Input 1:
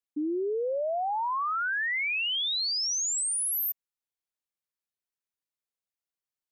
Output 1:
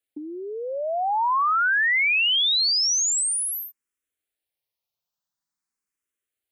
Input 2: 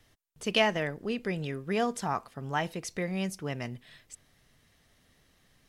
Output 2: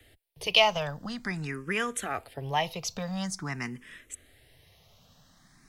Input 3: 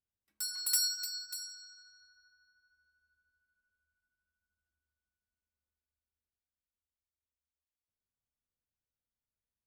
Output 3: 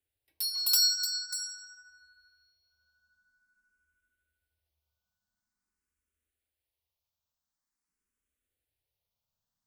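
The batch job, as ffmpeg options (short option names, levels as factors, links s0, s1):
-filter_complex "[0:a]acrossover=split=110|720|1900[s0][s1][s2][s3];[s1]acompressor=threshold=0.00891:ratio=10[s4];[s0][s4][s2][s3]amix=inputs=4:normalize=0,asplit=2[s5][s6];[s6]afreqshift=0.47[s7];[s5][s7]amix=inputs=2:normalize=1,volume=2.66"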